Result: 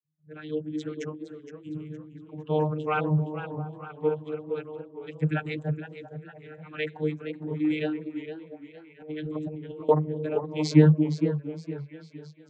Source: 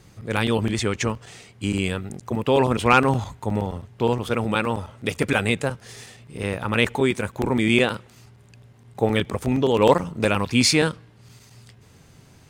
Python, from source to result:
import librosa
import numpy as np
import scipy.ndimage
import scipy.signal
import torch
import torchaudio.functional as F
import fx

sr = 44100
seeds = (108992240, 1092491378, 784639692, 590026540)

y = fx.bin_expand(x, sr, power=2.0)
y = fx.rotary(y, sr, hz=0.7)
y = fx.echo_stepped(y, sr, ms=228, hz=260.0, octaves=0.7, feedback_pct=70, wet_db=-6.0)
y = fx.vocoder(y, sr, bands=32, carrier='saw', carrier_hz=153.0)
y = fx.lowpass(y, sr, hz=1400.0, slope=6, at=(1.69, 2.42))
y = fx.over_compress(y, sr, threshold_db=-39.0, ratio=-1.0, at=(9.0, 9.89))
y = fx.echo_warbled(y, sr, ms=463, feedback_pct=37, rate_hz=2.8, cents=112, wet_db=-12)
y = F.gain(torch.from_numpy(y), 2.0).numpy()